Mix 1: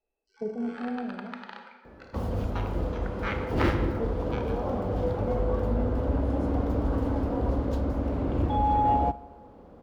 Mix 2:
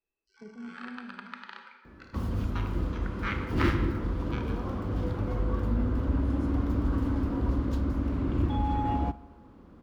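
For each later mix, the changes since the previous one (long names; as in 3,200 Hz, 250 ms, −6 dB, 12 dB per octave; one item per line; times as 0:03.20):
speech −9.5 dB
master: add flat-topped bell 610 Hz −10 dB 1.2 octaves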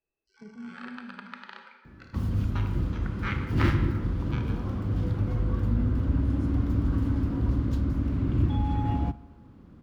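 first sound: add parametric band 590 Hz +9 dB 1.4 octaves
master: add octave-band graphic EQ 125/500/1,000 Hz +8/−4/−4 dB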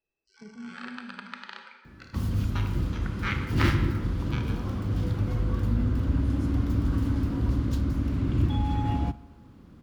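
master: add high-shelf EQ 2,800 Hz +9 dB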